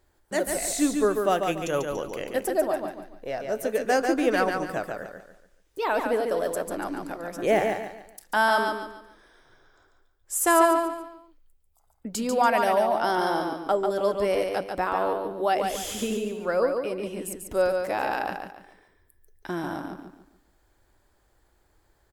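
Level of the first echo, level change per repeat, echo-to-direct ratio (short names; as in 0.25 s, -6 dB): -5.0 dB, -9.5 dB, -4.5 dB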